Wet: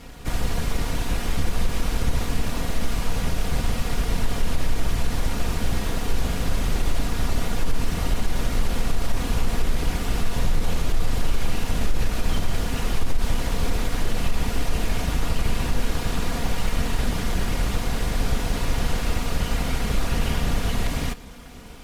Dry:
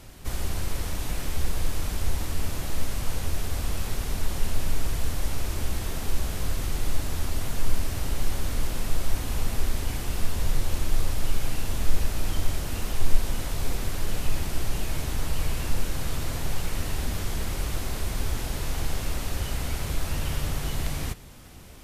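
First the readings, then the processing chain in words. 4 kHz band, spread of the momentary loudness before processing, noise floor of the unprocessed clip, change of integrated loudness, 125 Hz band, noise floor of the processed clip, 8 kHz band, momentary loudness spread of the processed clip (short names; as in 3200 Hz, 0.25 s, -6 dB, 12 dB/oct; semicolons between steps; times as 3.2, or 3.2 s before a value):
+4.5 dB, 2 LU, -34 dBFS, +4.5 dB, +4.0 dB, -29 dBFS, +1.0 dB, 2 LU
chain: minimum comb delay 4.2 ms; high shelf 6600 Hz -10 dB; limiter -18.5 dBFS, peak gain reduction 11 dB; gain +7.5 dB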